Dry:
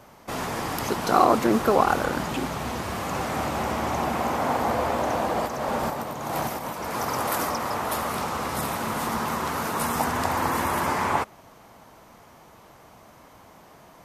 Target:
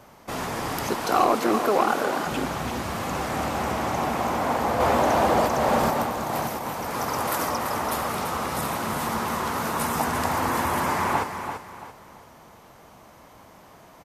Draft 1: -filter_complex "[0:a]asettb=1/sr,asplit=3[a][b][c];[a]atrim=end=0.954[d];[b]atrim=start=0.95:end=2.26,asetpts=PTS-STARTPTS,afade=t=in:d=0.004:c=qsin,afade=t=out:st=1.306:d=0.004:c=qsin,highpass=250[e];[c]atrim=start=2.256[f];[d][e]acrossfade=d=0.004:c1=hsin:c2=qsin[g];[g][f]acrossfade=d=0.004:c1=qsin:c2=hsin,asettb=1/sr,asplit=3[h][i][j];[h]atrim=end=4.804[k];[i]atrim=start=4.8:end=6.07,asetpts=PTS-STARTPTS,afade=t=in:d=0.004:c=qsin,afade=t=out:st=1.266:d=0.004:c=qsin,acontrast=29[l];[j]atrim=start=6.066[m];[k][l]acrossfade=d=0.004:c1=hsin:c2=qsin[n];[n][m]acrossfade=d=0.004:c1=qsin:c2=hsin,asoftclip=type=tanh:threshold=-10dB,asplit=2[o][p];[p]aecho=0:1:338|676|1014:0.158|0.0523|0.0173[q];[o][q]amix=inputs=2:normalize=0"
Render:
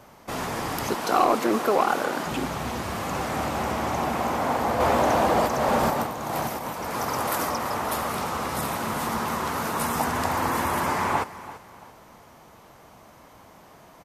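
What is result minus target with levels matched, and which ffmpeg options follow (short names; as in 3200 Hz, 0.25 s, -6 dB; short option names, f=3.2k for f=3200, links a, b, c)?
echo-to-direct -8 dB
-filter_complex "[0:a]asettb=1/sr,asplit=3[a][b][c];[a]atrim=end=0.954[d];[b]atrim=start=0.95:end=2.26,asetpts=PTS-STARTPTS,afade=t=in:d=0.004:c=qsin,afade=t=out:st=1.306:d=0.004:c=qsin,highpass=250[e];[c]atrim=start=2.256[f];[d][e]acrossfade=d=0.004:c1=hsin:c2=qsin[g];[g][f]acrossfade=d=0.004:c1=qsin:c2=hsin,asettb=1/sr,asplit=3[h][i][j];[h]atrim=end=4.804[k];[i]atrim=start=4.8:end=6.07,asetpts=PTS-STARTPTS,afade=t=in:d=0.004:c=qsin,afade=t=out:st=1.266:d=0.004:c=qsin,acontrast=29[l];[j]atrim=start=6.066[m];[k][l]acrossfade=d=0.004:c1=hsin:c2=qsin[n];[n][m]acrossfade=d=0.004:c1=qsin:c2=hsin,asoftclip=type=tanh:threshold=-10dB,asplit=2[o][p];[p]aecho=0:1:338|676|1014|1352:0.398|0.131|0.0434|0.0143[q];[o][q]amix=inputs=2:normalize=0"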